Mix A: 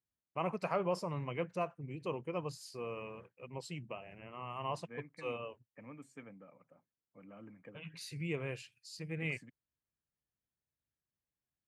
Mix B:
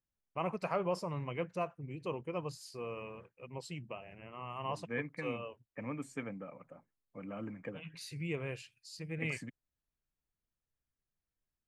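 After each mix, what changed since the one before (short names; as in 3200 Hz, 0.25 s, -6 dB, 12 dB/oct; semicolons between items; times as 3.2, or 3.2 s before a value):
second voice +10.5 dB; master: remove HPF 78 Hz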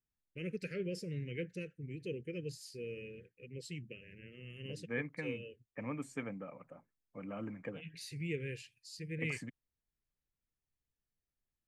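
first voice: add elliptic band-stop 470–1700 Hz, stop band 40 dB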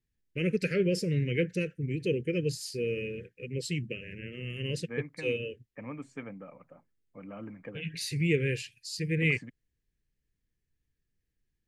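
first voice +12.0 dB; second voice: add air absorption 78 m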